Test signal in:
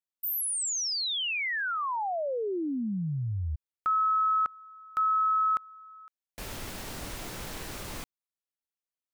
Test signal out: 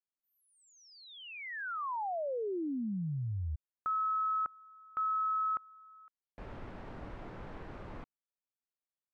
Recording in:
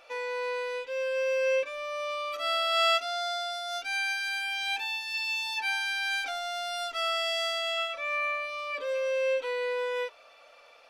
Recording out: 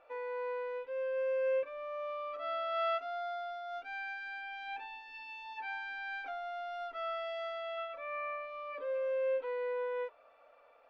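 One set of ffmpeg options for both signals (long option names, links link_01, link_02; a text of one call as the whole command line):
ffmpeg -i in.wav -af "lowpass=1400,volume=-4.5dB" out.wav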